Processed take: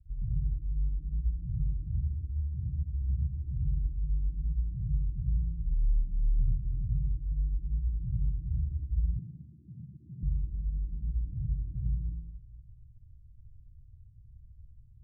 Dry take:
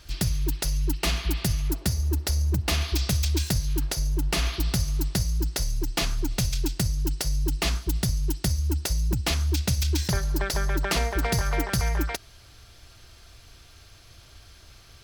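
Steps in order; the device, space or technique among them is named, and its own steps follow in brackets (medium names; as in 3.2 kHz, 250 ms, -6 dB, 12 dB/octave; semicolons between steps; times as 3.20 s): club heard from the street (peak limiter -20.5 dBFS, peak gain reduction 7.5 dB; low-pass 140 Hz 24 dB/octave; reverberation RT60 0.75 s, pre-delay 60 ms, DRR -3 dB); 9.19–10.23 s: high-pass 150 Hz 24 dB/octave; trim -5 dB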